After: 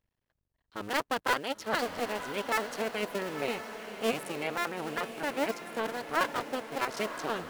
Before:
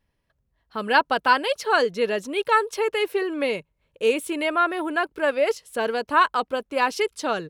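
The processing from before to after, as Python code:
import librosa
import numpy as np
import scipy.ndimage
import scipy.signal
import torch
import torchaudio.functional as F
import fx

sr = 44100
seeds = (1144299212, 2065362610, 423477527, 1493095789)

y = fx.cycle_switch(x, sr, every=2, mode='muted')
y = fx.echo_diffused(y, sr, ms=971, feedback_pct=54, wet_db=-9.5)
y = y * librosa.db_to_amplitude(-7.0)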